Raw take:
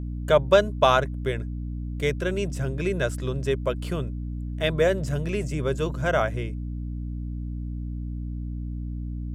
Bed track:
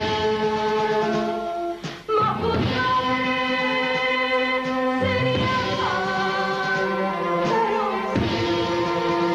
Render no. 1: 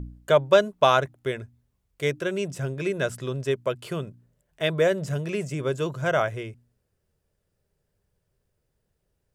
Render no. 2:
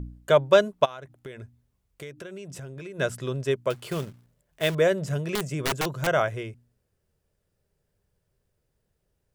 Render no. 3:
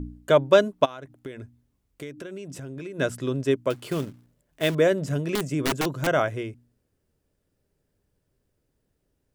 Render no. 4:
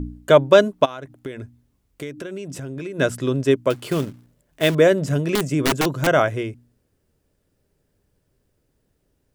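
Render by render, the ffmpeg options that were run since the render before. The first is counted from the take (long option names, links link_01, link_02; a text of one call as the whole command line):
ffmpeg -i in.wav -af "bandreject=frequency=60:width_type=h:width=4,bandreject=frequency=120:width_type=h:width=4,bandreject=frequency=180:width_type=h:width=4,bandreject=frequency=240:width_type=h:width=4,bandreject=frequency=300:width_type=h:width=4" out.wav
ffmpeg -i in.wav -filter_complex "[0:a]asplit=3[link_01][link_02][link_03];[link_01]afade=type=out:start_time=0.84:duration=0.02[link_04];[link_02]acompressor=threshold=-36dB:ratio=8:attack=3.2:release=140:knee=1:detection=peak,afade=type=in:start_time=0.84:duration=0.02,afade=type=out:start_time=2.98:duration=0.02[link_05];[link_03]afade=type=in:start_time=2.98:duration=0.02[link_06];[link_04][link_05][link_06]amix=inputs=3:normalize=0,asettb=1/sr,asplit=3[link_07][link_08][link_09];[link_07]atrim=end=3.704[link_10];[link_08]atrim=start=3.7:end=4.75,asetpts=PTS-STARTPTS,afade=type=in:duration=0.004:curve=qsin,afade=type=out:start_time=1.046:duration=0.004:curve=qsin,acrusher=bits=3:mode=log:mix=0:aa=0.000001[link_11];[link_09]atrim=start=4.746[link_12];[link_10][link_11]acrossfade=duration=0.004:curve1=hsin:curve2=qsin[link_13];[link_13][link_12]acrossfade=duration=0.004:curve1=qsin:curve2=hsin,asettb=1/sr,asplit=3[link_14][link_15][link_16];[link_14]atrim=end=5.354[link_17];[link_15]atrim=start=5.35:end=6.07,asetpts=PTS-STARTPTS,afade=type=in:duration=0.004:curve=qsin,afade=type=out:start_time=0.716:duration=0.004:curve=qsin,aeval=exprs='(mod(10.6*val(0)+1,2)-1)/10.6':channel_layout=same[link_18];[link_16]atrim=start=6.066[link_19];[link_17][link_18]acrossfade=duration=0.004:curve1=hsin:curve2=qsin[link_20];[link_20][link_19]acrossfade=duration=0.004:curve1=qsin:curve2=hsin" out.wav
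ffmpeg -i in.wav -af "equalizer=frequency=280:width_type=o:width=0.5:gain=11" out.wav
ffmpeg -i in.wav -af "volume=5.5dB,alimiter=limit=-1dB:level=0:latency=1" out.wav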